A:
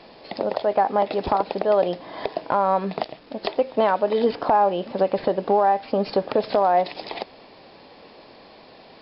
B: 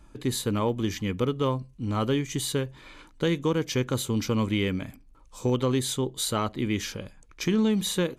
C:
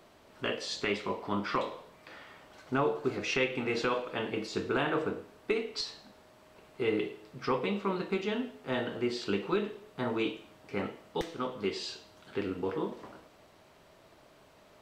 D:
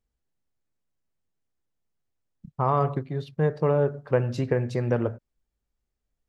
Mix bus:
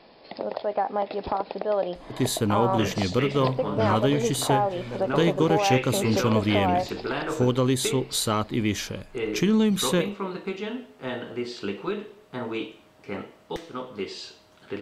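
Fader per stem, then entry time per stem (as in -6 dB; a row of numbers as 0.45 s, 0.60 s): -6.0 dB, +2.5 dB, +0.5 dB, -12.0 dB; 0.00 s, 1.95 s, 2.35 s, 0.00 s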